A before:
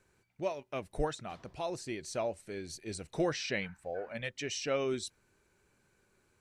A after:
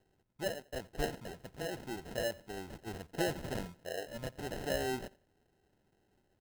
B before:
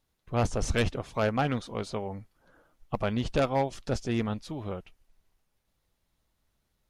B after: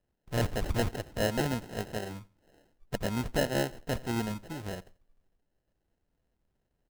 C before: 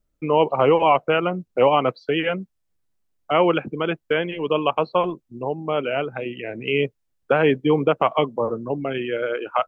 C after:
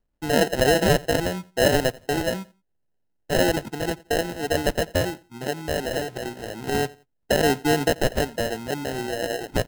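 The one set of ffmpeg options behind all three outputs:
-af "acrusher=samples=38:mix=1:aa=0.000001,aecho=1:1:87|174:0.075|0.0195,volume=0.75"

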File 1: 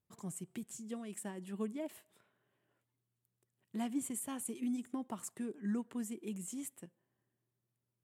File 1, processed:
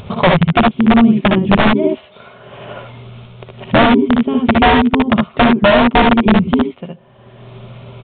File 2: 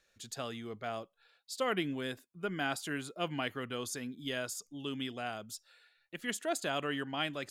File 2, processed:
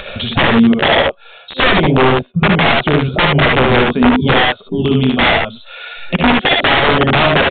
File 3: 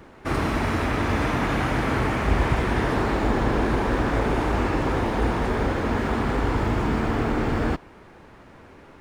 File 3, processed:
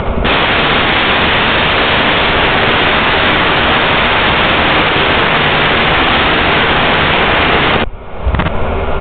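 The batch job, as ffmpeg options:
-af "afwtdn=0.0251,acompressor=mode=upward:threshold=0.0447:ratio=2.5,superequalizer=6b=0.316:8b=1.58:11b=0.398,acompressor=threshold=0.0501:ratio=8,asubboost=boost=3.5:cutoff=62,aeval=exprs='(mod(35.5*val(0)+1,2)-1)/35.5':c=same,aecho=1:1:61|74:0.531|0.631,aresample=8000,aresample=44100,alimiter=level_in=23.7:limit=0.891:release=50:level=0:latency=1,volume=0.891"

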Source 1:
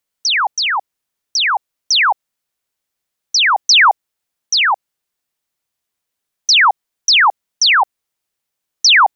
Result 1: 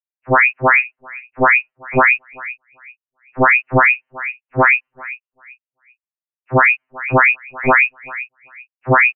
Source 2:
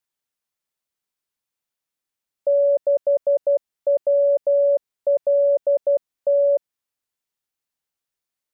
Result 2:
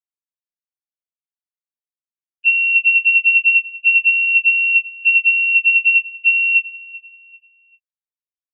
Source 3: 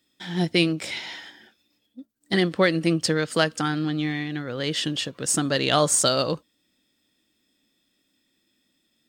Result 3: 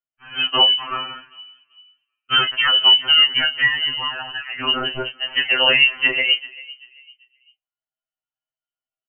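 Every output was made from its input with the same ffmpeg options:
-filter_complex "[0:a]highpass=320,agate=range=0.0224:threshold=0.0316:ratio=3:detection=peak,asplit=2[s0][s1];[s1]adelay=26,volume=0.316[s2];[s0][s2]amix=inputs=2:normalize=0,asplit=2[s3][s4];[s4]adelay=390,lowpass=f=820:p=1,volume=0.112,asplit=2[s5][s6];[s6]adelay=390,lowpass=f=820:p=1,volume=0.4,asplit=2[s7][s8];[s8]adelay=390,lowpass=f=820:p=1,volume=0.4[s9];[s5][s7][s9]amix=inputs=3:normalize=0[s10];[s3][s10]amix=inputs=2:normalize=0,lowpass=f=2800:t=q:w=0.5098,lowpass=f=2800:t=q:w=0.6013,lowpass=f=2800:t=q:w=0.9,lowpass=f=2800:t=q:w=2.563,afreqshift=-3300,alimiter=level_in=5.01:limit=0.891:release=50:level=0:latency=1,afftfilt=real='re*2.45*eq(mod(b,6),0)':imag='im*2.45*eq(mod(b,6),0)':win_size=2048:overlap=0.75,volume=0.75"

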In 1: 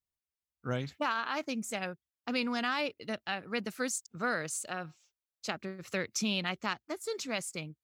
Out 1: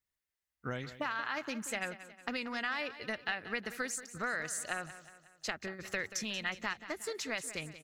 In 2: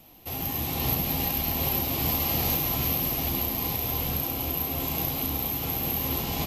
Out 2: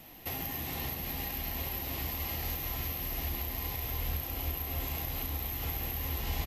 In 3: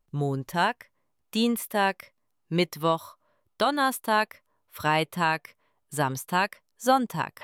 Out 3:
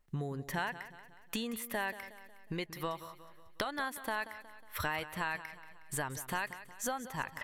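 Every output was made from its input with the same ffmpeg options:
-filter_complex "[0:a]acompressor=threshold=0.0178:ratio=10,equalizer=f=1900:w=2.3:g=8.5,bandreject=f=2300:w=25,asplit=2[s0][s1];[s1]aecho=0:1:182|364|546|728|910:0.2|0.0978|0.0479|0.0235|0.0115[s2];[s0][s2]amix=inputs=2:normalize=0,asubboost=boost=8.5:cutoff=57,volume=1.12"

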